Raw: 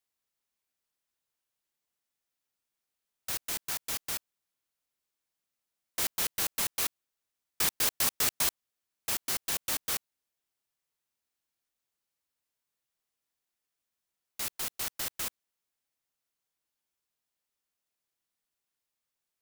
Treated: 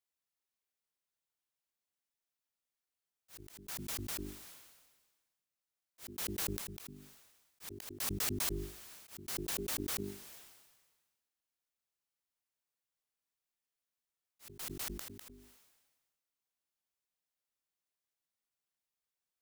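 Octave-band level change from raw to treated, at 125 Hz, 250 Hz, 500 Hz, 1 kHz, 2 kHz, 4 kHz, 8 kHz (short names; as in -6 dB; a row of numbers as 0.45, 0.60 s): +4.5, +4.0, -1.0, -9.5, -10.0, -10.0, -9.5 dB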